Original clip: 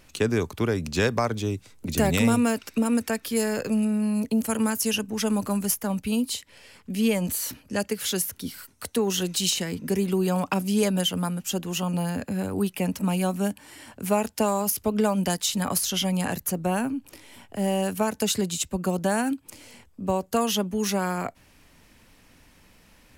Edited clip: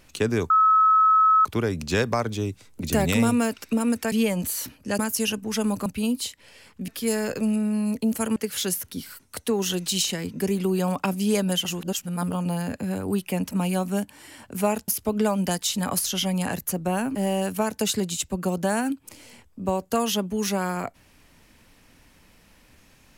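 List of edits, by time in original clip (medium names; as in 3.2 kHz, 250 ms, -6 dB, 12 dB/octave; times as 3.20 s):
0.50 s: add tone 1.29 kHz -14 dBFS 0.95 s
3.17–4.65 s: swap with 6.97–7.84 s
5.52–5.95 s: delete
11.13–11.81 s: reverse
14.36–14.67 s: delete
16.94–17.56 s: delete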